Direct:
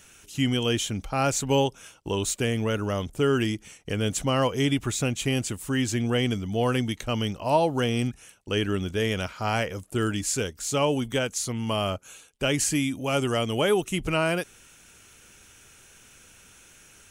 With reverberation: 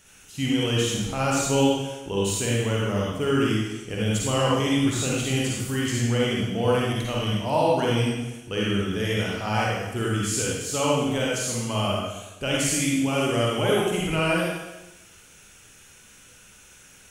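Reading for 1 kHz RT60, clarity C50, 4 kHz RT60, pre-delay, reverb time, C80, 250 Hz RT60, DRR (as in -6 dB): 1.0 s, -3.0 dB, 1.0 s, 40 ms, 1.0 s, 1.5 dB, 1.1 s, -5.0 dB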